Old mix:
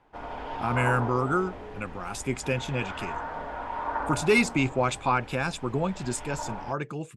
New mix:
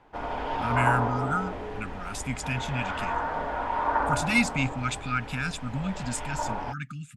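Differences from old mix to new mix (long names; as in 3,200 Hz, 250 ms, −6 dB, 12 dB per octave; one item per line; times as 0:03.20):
speech: add linear-phase brick-wall band-stop 280–1,200 Hz
background +5.0 dB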